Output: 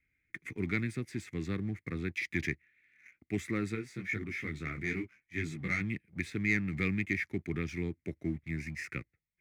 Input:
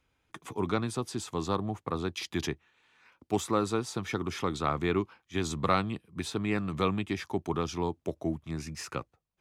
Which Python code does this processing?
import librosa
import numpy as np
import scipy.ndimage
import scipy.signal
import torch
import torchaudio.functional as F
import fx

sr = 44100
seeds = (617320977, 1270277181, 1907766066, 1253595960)

y = fx.curve_eq(x, sr, hz=(190.0, 340.0, 960.0, 2100.0, 3000.0), db=(0, -3, -27, 15, -10))
y = fx.leveller(y, sr, passes=1)
y = fx.detune_double(y, sr, cents=fx.line((3.74, 33.0), (5.8, 23.0)), at=(3.74, 5.8), fade=0.02)
y = y * 10.0 ** (-4.5 / 20.0)